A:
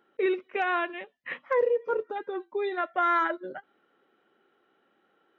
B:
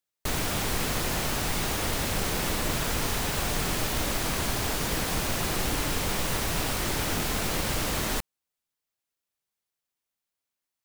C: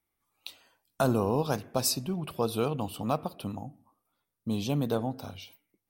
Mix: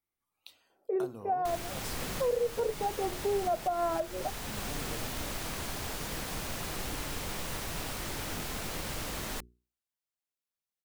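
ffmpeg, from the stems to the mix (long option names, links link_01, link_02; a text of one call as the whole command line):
ffmpeg -i stem1.wav -i stem2.wav -i stem3.wav -filter_complex "[0:a]lowpass=frequency=690:width_type=q:width=4.9,adelay=700,afade=type=in:start_time=2.11:duration=0.47:silence=0.421697[link_01];[1:a]adelay=1200,volume=-8.5dB[link_02];[2:a]acompressor=threshold=-35dB:ratio=3,volume=-8.5dB[link_03];[link_01][link_02][link_03]amix=inputs=3:normalize=0,bandreject=frequency=60:width_type=h:width=6,bandreject=frequency=120:width_type=h:width=6,bandreject=frequency=180:width_type=h:width=6,bandreject=frequency=240:width_type=h:width=6,bandreject=frequency=300:width_type=h:width=6,bandreject=frequency=360:width_type=h:width=6,bandreject=frequency=420:width_type=h:width=6,alimiter=limit=-22dB:level=0:latency=1:release=402" out.wav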